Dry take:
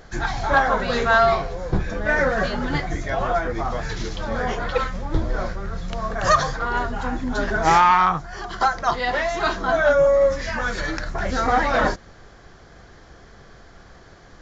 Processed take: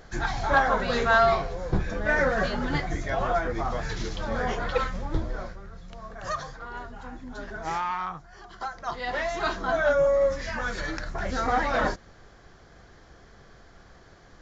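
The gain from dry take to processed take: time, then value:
5.04 s -3.5 dB
5.71 s -14.5 dB
8.69 s -14.5 dB
9.22 s -5.5 dB

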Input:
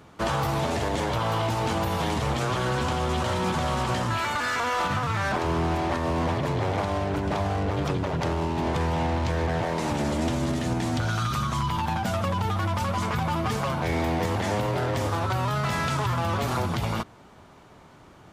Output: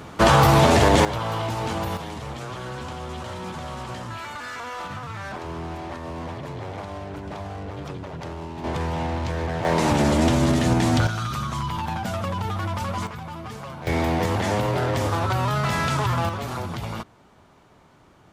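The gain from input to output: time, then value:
+11 dB
from 1.05 s -1 dB
from 1.97 s -7.5 dB
from 8.64 s -1 dB
from 9.65 s +7 dB
from 11.07 s -1 dB
from 13.07 s -9 dB
from 13.87 s +3 dB
from 16.29 s -3.5 dB

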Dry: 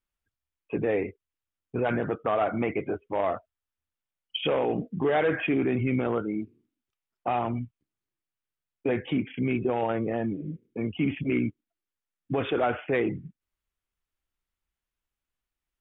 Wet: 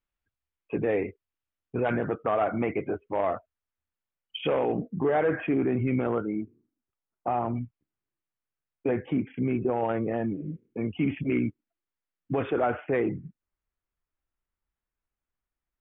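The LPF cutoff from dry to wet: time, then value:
3400 Hz
from 1.99 s 2600 Hz
from 4.72 s 1700 Hz
from 5.88 s 2300 Hz
from 6.43 s 1400 Hz
from 7.56 s 2300 Hz
from 8.91 s 1600 Hz
from 9.84 s 2600 Hz
from 12.43 s 1900 Hz

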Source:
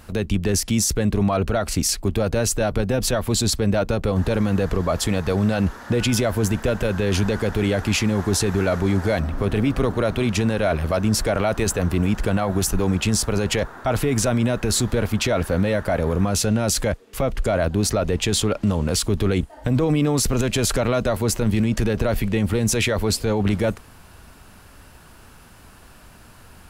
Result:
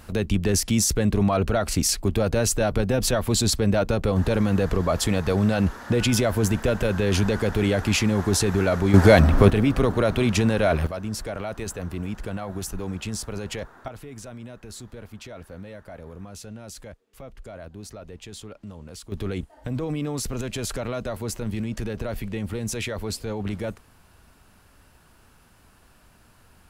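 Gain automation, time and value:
-1 dB
from 8.94 s +8 dB
from 9.5 s 0 dB
from 10.87 s -10.5 dB
from 13.88 s -19.5 dB
from 19.12 s -9 dB

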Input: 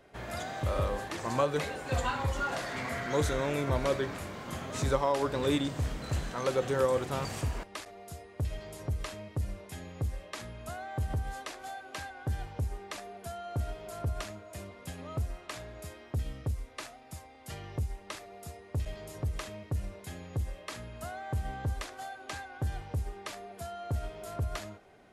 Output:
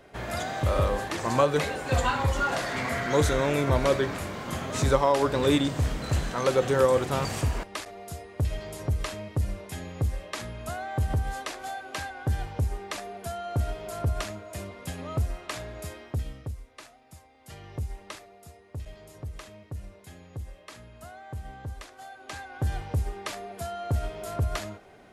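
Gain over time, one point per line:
15.96 s +6 dB
16.64 s -5 dB
17.32 s -5 dB
18.01 s +2.5 dB
18.37 s -4.5 dB
21.93 s -4.5 dB
22.72 s +6 dB

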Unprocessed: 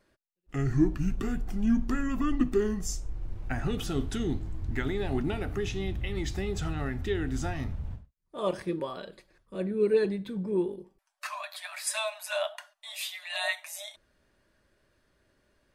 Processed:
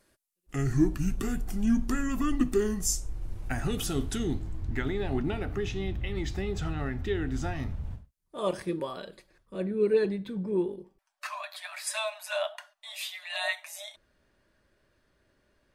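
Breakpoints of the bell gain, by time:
bell 11000 Hz 1.5 oct
3.69 s +13 dB
4.61 s +2 dB
4.91 s -6 dB
7.4 s -6 dB
7.94 s +5.5 dB
9.03 s +5.5 dB
9.75 s -3 dB

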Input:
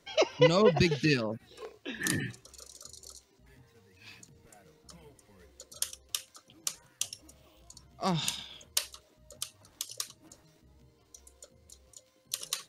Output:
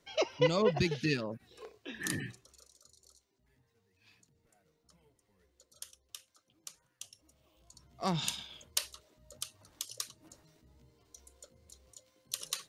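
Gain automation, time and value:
2.31 s -5 dB
2.8 s -13.5 dB
7.11 s -13.5 dB
8.02 s -2.5 dB

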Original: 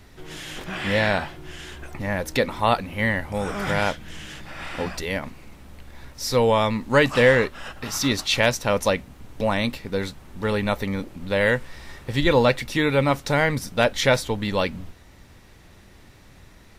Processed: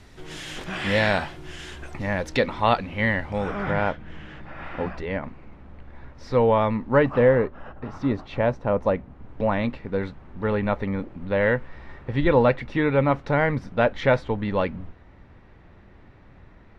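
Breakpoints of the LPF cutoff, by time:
1.75 s 9500 Hz
2.44 s 4100 Hz
3.3 s 4100 Hz
3.7 s 1700 Hz
6.74 s 1700 Hz
7.33 s 1000 Hz
8.78 s 1000 Hz
9.42 s 1800 Hz

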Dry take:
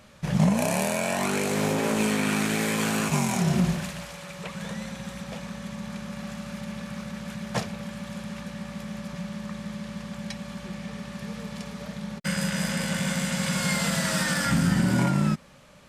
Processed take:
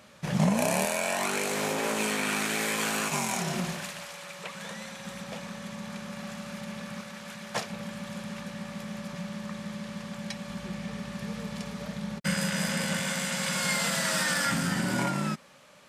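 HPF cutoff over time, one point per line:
HPF 6 dB/oct
200 Hz
from 0.85 s 560 Hz
from 5.05 s 240 Hz
from 7.01 s 560 Hz
from 7.7 s 170 Hz
from 10.5 s 42 Hz
from 12.34 s 180 Hz
from 13 s 410 Hz

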